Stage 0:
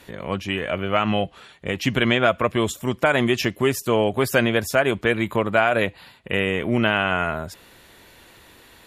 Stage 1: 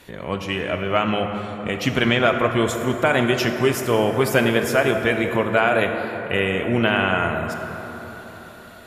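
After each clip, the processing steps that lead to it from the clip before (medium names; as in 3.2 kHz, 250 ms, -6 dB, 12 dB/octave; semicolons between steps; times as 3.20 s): plate-style reverb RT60 4.5 s, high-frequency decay 0.4×, DRR 4.5 dB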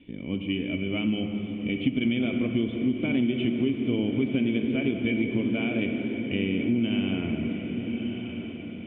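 cascade formant filter i; on a send: echo that smears into a reverb 1213 ms, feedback 50%, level -10.5 dB; on the sum: compression, threshold -28 dBFS, peak gain reduction 9 dB; trim +7 dB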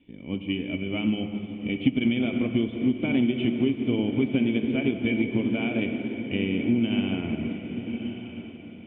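peaking EQ 840 Hz +5.5 dB 0.4 oct; upward expansion 1.5:1, over -41 dBFS; trim +3.5 dB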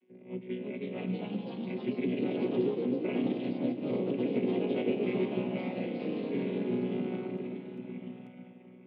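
vocoder on a held chord bare fifth, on B2; three-band isolator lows -19 dB, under 290 Hz, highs -17 dB, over 2.8 kHz; ever faster or slower copies 370 ms, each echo +2 st, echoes 3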